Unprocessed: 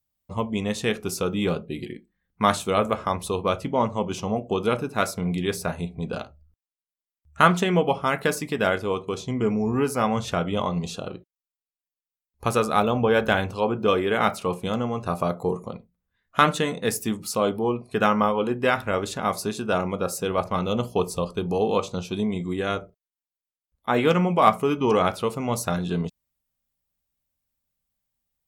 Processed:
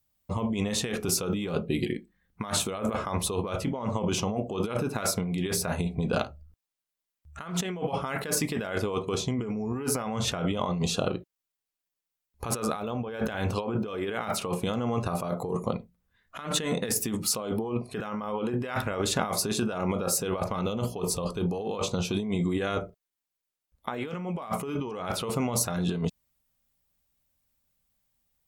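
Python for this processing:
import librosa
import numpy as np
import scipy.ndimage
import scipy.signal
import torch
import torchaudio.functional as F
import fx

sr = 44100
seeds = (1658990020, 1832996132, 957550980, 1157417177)

y = fx.over_compress(x, sr, threshold_db=-30.0, ratio=-1.0)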